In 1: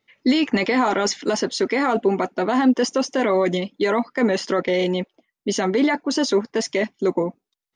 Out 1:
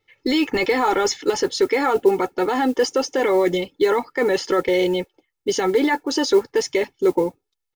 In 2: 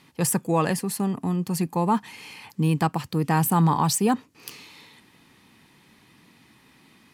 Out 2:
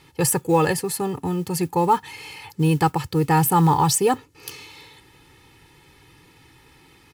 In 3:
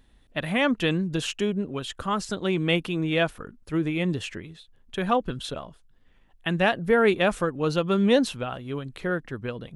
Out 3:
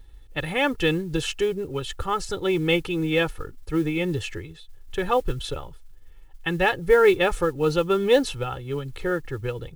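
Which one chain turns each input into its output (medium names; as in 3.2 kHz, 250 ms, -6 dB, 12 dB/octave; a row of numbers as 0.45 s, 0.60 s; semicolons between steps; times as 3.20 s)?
bass shelf 110 Hz +10.5 dB; comb 2.3 ms, depth 80%; modulation noise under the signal 30 dB; peak normalisation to -6 dBFS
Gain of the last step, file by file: -1.5 dB, +1.5 dB, -1.0 dB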